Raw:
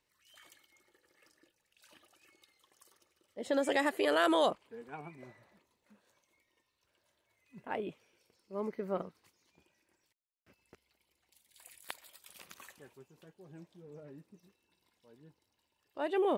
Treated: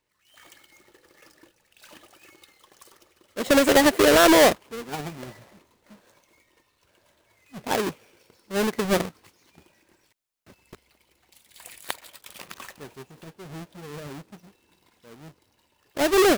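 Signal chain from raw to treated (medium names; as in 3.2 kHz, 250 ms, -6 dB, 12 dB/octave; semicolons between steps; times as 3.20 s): square wave that keeps the level; level rider gain up to 11.5 dB; 11.95–12.81 s: hysteresis with a dead band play -49.5 dBFS; trim -2.5 dB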